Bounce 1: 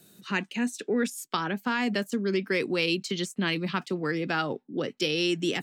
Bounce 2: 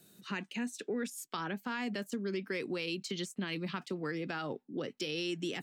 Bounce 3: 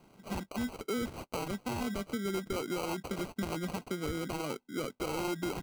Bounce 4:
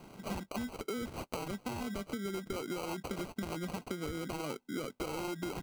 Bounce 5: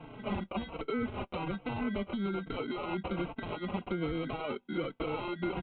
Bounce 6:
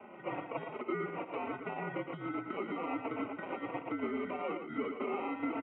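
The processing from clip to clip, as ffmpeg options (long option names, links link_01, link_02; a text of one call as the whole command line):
ffmpeg -i in.wav -af "alimiter=limit=-18.5dB:level=0:latency=1:release=56,acompressor=threshold=-30dB:ratio=2,volume=-5dB" out.wav
ffmpeg -i in.wav -af "acrusher=samples=25:mix=1:aa=0.000001,volume=1.5dB" out.wav
ffmpeg -i in.wav -af "acompressor=threshold=-44dB:ratio=5,volume=7.5dB" out.wav
ffmpeg -i in.wav -filter_complex "[0:a]aresample=8000,asoftclip=type=tanh:threshold=-30.5dB,aresample=44100,asplit=2[link_01][link_02];[link_02]adelay=4,afreqshift=-1.2[link_03];[link_01][link_03]amix=inputs=2:normalize=1,volume=8dB" out.wav
ffmpeg -i in.wav -filter_complex "[0:a]asplit=2[link_01][link_02];[link_02]aecho=0:1:115|616:0.447|0.133[link_03];[link_01][link_03]amix=inputs=2:normalize=0,highpass=frequency=330:width_type=q:width=0.5412,highpass=frequency=330:width_type=q:width=1.307,lowpass=frequency=2600:width_type=q:width=0.5176,lowpass=frequency=2600:width_type=q:width=0.7071,lowpass=frequency=2600:width_type=q:width=1.932,afreqshift=-70" out.wav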